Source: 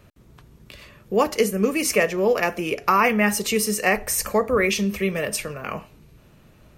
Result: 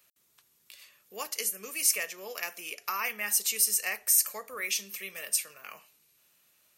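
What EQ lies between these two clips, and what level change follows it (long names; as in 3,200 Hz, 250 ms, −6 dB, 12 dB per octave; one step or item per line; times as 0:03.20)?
first difference
0.0 dB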